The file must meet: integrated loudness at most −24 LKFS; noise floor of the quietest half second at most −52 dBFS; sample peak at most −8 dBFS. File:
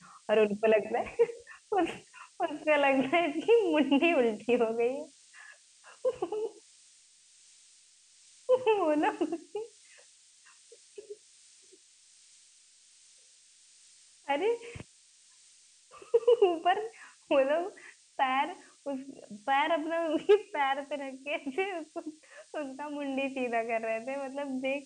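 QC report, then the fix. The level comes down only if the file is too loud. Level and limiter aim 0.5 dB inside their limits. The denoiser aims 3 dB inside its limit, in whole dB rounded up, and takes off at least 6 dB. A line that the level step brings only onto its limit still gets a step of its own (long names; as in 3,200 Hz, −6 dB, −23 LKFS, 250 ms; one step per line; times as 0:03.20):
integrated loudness −30.0 LKFS: in spec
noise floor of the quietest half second −61 dBFS: in spec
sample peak −13.5 dBFS: in spec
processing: no processing needed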